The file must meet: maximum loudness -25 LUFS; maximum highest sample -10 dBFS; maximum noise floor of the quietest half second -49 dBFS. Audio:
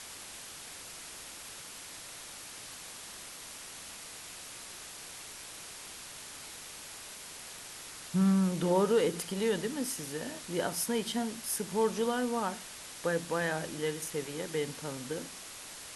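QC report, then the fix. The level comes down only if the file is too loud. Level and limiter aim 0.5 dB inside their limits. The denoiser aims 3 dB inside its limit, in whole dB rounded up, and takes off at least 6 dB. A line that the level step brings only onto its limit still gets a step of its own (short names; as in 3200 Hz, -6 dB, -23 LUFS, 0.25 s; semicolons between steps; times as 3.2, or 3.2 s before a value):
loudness -35.0 LUFS: OK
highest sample -17.0 dBFS: OK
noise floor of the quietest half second -46 dBFS: fail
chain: denoiser 6 dB, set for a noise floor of -46 dBFS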